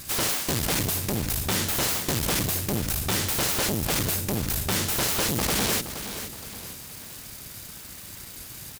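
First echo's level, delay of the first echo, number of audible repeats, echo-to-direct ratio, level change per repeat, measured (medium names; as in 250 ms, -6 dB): -11.0 dB, 471 ms, 3, -10.0 dB, -7.5 dB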